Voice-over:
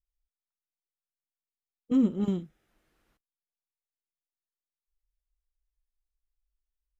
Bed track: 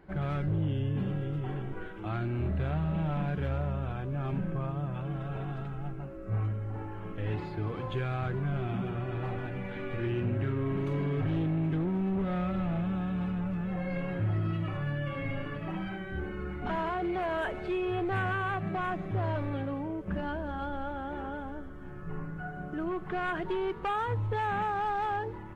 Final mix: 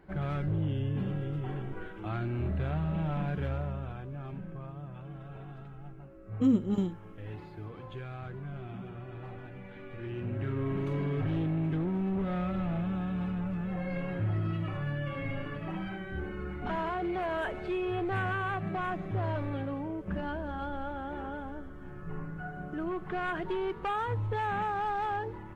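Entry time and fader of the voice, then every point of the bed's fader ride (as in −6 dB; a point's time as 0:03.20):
4.50 s, −1.0 dB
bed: 0:03.44 −1 dB
0:04.39 −9 dB
0:09.94 −9 dB
0:10.60 −1 dB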